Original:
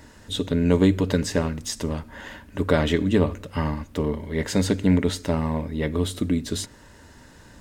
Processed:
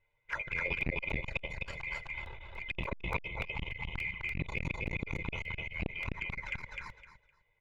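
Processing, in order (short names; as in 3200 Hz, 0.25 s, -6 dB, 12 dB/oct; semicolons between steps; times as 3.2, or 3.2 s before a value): band-swap scrambler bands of 2000 Hz; LPF 1100 Hz 12 dB/oct; gate with hold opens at -46 dBFS; comb 2 ms, depth 86%; harmonic-percussive split harmonic -7 dB; low shelf 110 Hz +8.5 dB; envelope flanger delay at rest 8.9 ms, full sweep at -33.5 dBFS; feedback echo 0.256 s, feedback 20%, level -3 dB; crackling interface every 0.29 s, samples 64, repeat, from 0.81; core saturation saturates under 610 Hz; gain +5.5 dB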